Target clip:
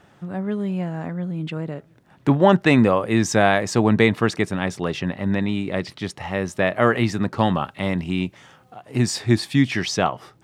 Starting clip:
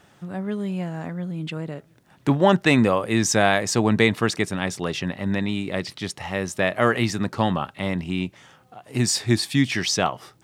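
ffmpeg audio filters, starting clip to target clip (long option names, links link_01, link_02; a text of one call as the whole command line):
ffmpeg -i in.wav -af "asetnsamples=nb_out_samples=441:pad=0,asendcmd='7.39 highshelf g -3;8.82 highshelf g -9',highshelf=frequency=3400:gain=-9,volume=2.5dB" out.wav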